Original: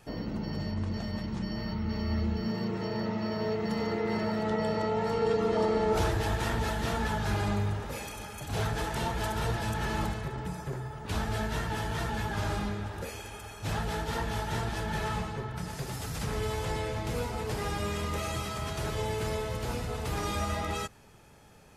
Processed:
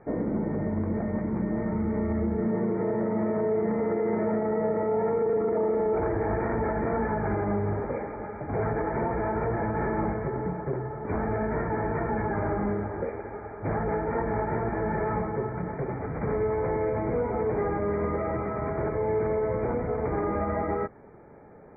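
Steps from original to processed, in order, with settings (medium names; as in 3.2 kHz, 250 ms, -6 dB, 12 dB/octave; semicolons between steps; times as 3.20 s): peaking EQ 410 Hz +14 dB 2.6 oct; peak limiter -16.5 dBFS, peak gain reduction 11 dB; brick-wall FIR low-pass 2.4 kHz; trim -2.5 dB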